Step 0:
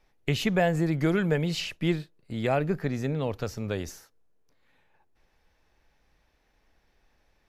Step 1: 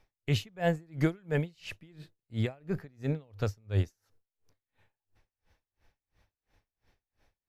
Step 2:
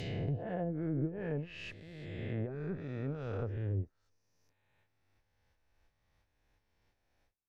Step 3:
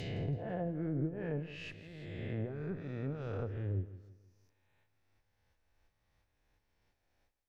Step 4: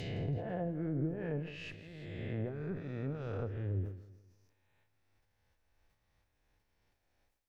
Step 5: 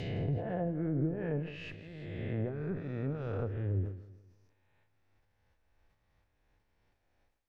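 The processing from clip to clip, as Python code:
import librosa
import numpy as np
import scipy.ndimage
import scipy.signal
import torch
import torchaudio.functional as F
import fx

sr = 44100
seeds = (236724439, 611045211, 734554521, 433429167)

y1 = fx.peak_eq(x, sr, hz=100.0, db=14.0, octaves=0.33)
y1 = y1 * 10.0 ** (-34 * (0.5 - 0.5 * np.cos(2.0 * np.pi * 2.9 * np.arange(len(y1)) / sr)) / 20.0)
y2 = fx.spec_swells(y1, sr, rise_s=2.2)
y2 = fx.env_lowpass_down(y2, sr, base_hz=410.0, full_db=-20.5)
y2 = y2 * librosa.db_to_amplitude(-9.0)
y3 = fx.echo_warbled(y2, sr, ms=164, feedback_pct=42, rate_hz=2.8, cents=51, wet_db=-15.0)
y3 = y3 * librosa.db_to_amplitude(-1.0)
y4 = fx.sustainer(y3, sr, db_per_s=87.0)
y5 = fx.high_shelf(y4, sr, hz=4900.0, db=-11.5)
y5 = y5 * librosa.db_to_amplitude(3.0)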